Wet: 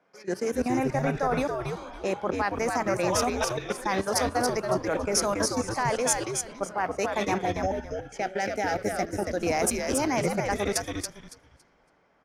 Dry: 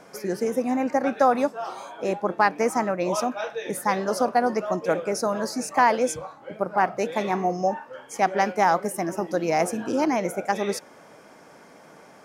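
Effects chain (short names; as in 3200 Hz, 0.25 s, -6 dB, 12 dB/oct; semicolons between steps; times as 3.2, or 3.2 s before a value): low-pass opened by the level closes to 2900 Hz, open at -21 dBFS; tilt shelf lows -3.5 dB, about 1500 Hz; de-hum 109.8 Hz, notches 3; level quantiser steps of 15 dB; 7.35–9.38 Butterworth band-stop 1100 Hz, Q 2.1; frequency-shifting echo 0.28 s, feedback 30%, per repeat -110 Hz, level -3.5 dB; three-band expander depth 40%; gain +4 dB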